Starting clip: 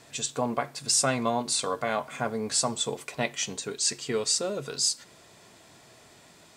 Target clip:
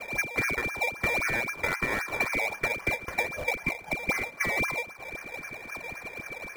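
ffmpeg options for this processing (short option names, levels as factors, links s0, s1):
-filter_complex "[0:a]lowshelf=f=220:t=q:w=3:g=11,alimiter=limit=0.133:level=0:latency=1:release=169,lowpass=f=2100:t=q:w=0.5098,lowpass=f=2100:t=q:w=0.6013,lowpass=f=2100:t=q:w=0.9,lowpass=f=2100:t=q:w=2.563,afreqshift=-2500,asplit=2[s0][s1];[s1]acrusher=samples=21:mix=1:aa=0.000001:lfo=1:lforange=21:lforate=3.8,volume=0.708[s2];[s0][s2]amix=inputs=2:normalize=0,acompressor=threshold=0.0251:ratio=6,volume=2.11"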